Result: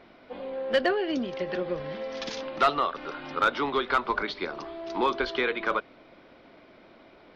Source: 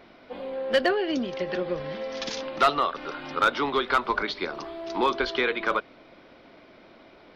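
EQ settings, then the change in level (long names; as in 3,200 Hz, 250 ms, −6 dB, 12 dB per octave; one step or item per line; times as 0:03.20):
high-shelf EQ 7,100 Hz −9 dB
−1.5 dB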